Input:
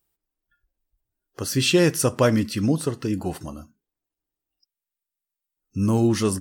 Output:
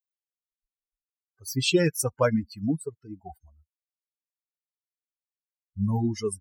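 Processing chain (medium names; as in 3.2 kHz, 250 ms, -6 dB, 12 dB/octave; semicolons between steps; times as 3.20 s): expander on every frequency bin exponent 3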